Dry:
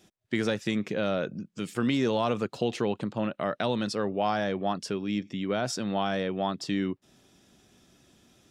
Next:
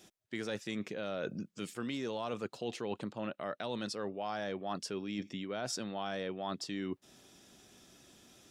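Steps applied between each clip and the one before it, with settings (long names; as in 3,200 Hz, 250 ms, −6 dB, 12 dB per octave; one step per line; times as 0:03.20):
bass and treble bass −5 dB, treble +3 dB
reversed playback
downward compressor 6 to 1, threshold −36 dBFS, peak gain reduction 13 dB
reversed playback
level +1 dB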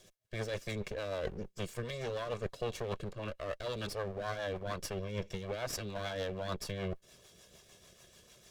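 lower of the sound and its delayed copy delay 1.8 ms
rotating-speaker cabinet horn 6.7 Hz
level +4.5 dB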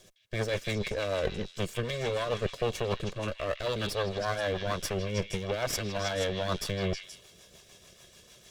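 in parallel at −5.5 dB: dead-zone distortion −52 dBFS
on the sum: echo through a band-pass that steps 159 ms, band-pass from 2,800 Hz, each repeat 0.7 octaves, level −2 dB
level +3.5 dB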